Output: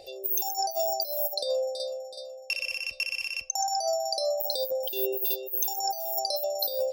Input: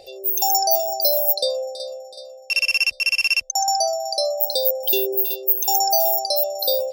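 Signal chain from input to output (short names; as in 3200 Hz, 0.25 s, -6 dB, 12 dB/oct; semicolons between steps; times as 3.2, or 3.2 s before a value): 4.96–5.71 de-hum 305.9 Hz, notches 17; on a send at -19 dB: reverb RT60 0.35 s, pre-delay 3 ms; on the sum: negative-ratio compressor -22 dBFS, ratio -0.5; gain -6 dB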